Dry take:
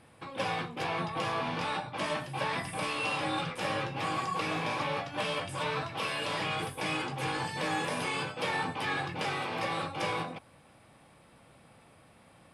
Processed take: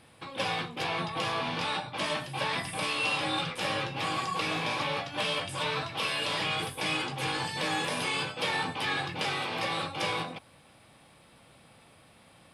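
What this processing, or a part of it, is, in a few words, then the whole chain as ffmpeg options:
presence and air boost: -af "equalizer=f=3700:t=o:w=1.2:g=6,highshelf=f=9100:g=6"

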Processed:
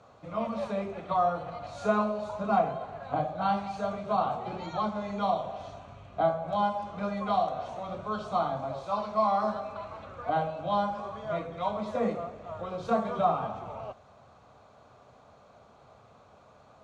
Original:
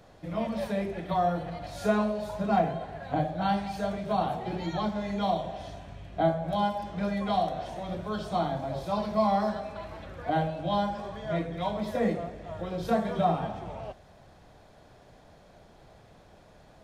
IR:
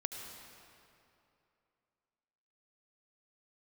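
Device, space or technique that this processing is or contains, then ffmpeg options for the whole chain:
car door speaker: -filter_complex "[0:a]asettb=1/sr,asplit=3[s0][s1][s2];[s0]atrim=end=8.724[s3];[s1]atrim=start=8.72:end=9.44,asetpts=PTS-STARTPTS,afade=t=in:d=0.004:c=qsin,afade=t=out:st=0.716:d=0.004:c=qsin,equalizer=f=150:w=0.39:g=-5.5[s4];[s2]atrim=start=9.436[s5];[s3][s4]acrossfade=d=0.004:c1=hsin:c2=qsin[s6];[s6][s5]acrossfade=d=0.004:c1=qsin:c2=hsin,highpass=100,equalizer=f=170:t=q:w=4:g=-8,equalizer=f=330:t=q:w=4:g=-9,equalizer=f=1200:t=q:w=4:g=10,equalizer=f=1800:t=q:w=4:g=-10,equalizer=f=3300:t=q:w=4:g=-5,equalizer=f=5100:t=q:w=4:g=-8,lowpass=f=7100:w=0.5412,lowpass=f=7100:w=1.3066"

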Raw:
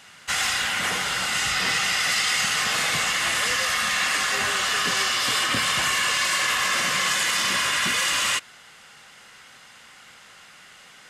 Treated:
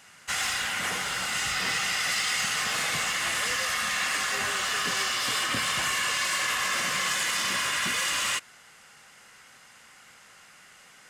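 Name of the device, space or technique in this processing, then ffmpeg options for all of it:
exciter from parts: -filter_complex "[0:a]asplit=2[s0][s1];[s1]highpass=f=3300:w=0.5412,highpass=f=3300:w=1.3066,asoftclip=type=tanh:threshold=0.0168,volume=0.501[s2];[s0][s2]amix=inputs=2:normalize=0,volume=0.596"

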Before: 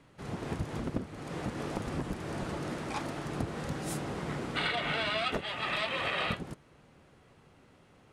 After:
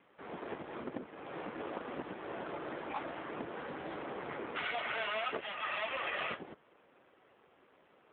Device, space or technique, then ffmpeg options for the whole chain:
telephone: -af "highpass=370,lowpass=3300,asoftclip=type=tanh:threshold=0.0501,volume=1.12" -ar 8000 -c:a libopencore_amrnb -b:a 7400

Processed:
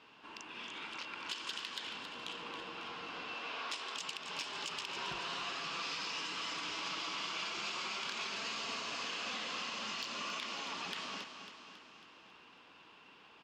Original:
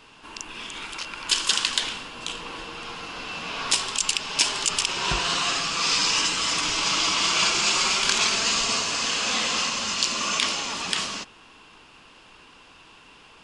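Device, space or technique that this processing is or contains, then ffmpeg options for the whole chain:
AM radio: -filter_complex "[0:a]asettb=1/sr,asplit=3[s0][s1][s2];[s0]atrim=end=3.344[s3];[s1]atrim=start=3.34:end=3.96,asetpts=PTS-STARTPTS,afade=t=in:d=0.004:c=qsin,afade=t=out:st=0.616:d=0.004:c=qsin,highpass=350[s4];[s2]atrim=start=3.956[s5];[s3][s4]acrossfade=d=0.004:c1=hsin:c2=qsin[s6];[s6][s5]acrossfade=d=0.004:c1=qsin:c2=hsin,highpass=120,lowpass=4000,acompressor=threshold=0.0355:ratio=6,asoftclip=type=tanh:threshold=0.133,equalizer=f=110:t=o:w=1.3:g=-3.5,aecho=1:1:274|548|822|1096|1370|1644|1918:0.335|0.191|0.109|0.062|0.0354|0.0202|0.0115,volume=0.376"

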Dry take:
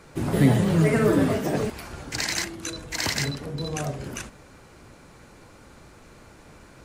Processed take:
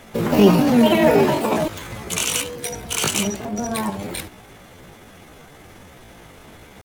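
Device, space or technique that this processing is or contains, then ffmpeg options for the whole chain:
chipmunk voice: -af "asetrate=64194,aresample=44100,atempo=0.686977,volume=1.88"

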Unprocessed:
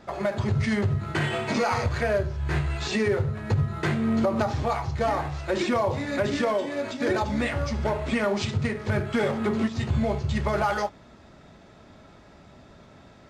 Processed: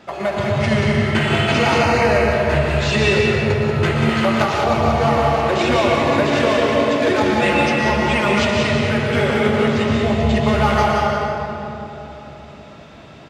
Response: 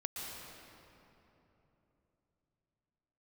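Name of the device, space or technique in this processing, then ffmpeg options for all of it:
PA in a hall: -filter_complex "[0:a]highpass=f=150:p=1,equalizer=f=2800:t=o:w=0.49:g=7.5,aecho=1:1:185:0.447[s0];[1:a]atrim=start_sample=2205[s1];[s0][s1]afir=irnorm=-1:irlink=0,asettb=1/sr,asplit=3[s2][s3][s4];[s2]atrim=end=1.834[s5];[s3]atrim=start=1.83:end=2.33,asetpts=PTS-STARTPTS,afade=t=in:d=0.004:c=qsin,afade=t=out:st=0.496:d=0.004:c=qsin,bandreject=f=3400:w=6.2[s6];[s4]atrim=start=2.326[s7];[s5][s6]acrossfade=d=0.004:c1=hsin:c2=qsin[s8];[s8][s7]acrossfade=d=0.004:c1=qsin:c2=hsin,asettb=1/sr,asplit=3[s9][s10][s11];[s9]atrim=end=4.094[s12];[s10]atrim=start=4.09:end=4.64,asetpts=PTS-STARTPTS,afade=t=in:d=0.004:c=qsin,afade=t=out:st=0.546:d=0.004:c=qsin,tiltshelf=f=660:g=-4[s13];[s11]atrim=start=4.636[s14];[s12][s13]acrossfade=d=0.004:c1=hsin:c2=qsin[s15];[s15][s14]acrossfade=d=0.004:c1=qsin:c2=hsin,asettb=1/sr,asplit=3[s16][s17][s18];[s16]atrim=end=7.414[s19];[s17]atrim=start=7.41:end=8.4,asetpts=PTS-STARTPTS,afade=t=in:d=0.004:c=qsin,afade=t=out:st=0.986:d=0.004:c=qsin,aecho=1:1:5.7:0.59,atrim=end_sample=43659[s20];[s18]atrim=start=8.396[s21];[s19][s20]acrossfade=d=0.004:c1=hsin:c2=qsin[s22];[s22][s21]acrossfade=d=0.004:c1=qsin:c2=hsin,volume=2.51"

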